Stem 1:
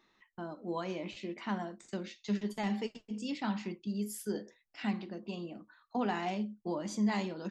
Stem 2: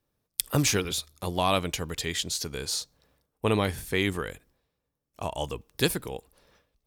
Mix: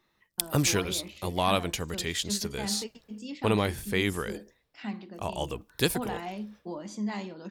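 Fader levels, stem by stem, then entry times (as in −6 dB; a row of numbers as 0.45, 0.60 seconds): −2.0, −1.0 decibels; 0.00, 0.00 seconds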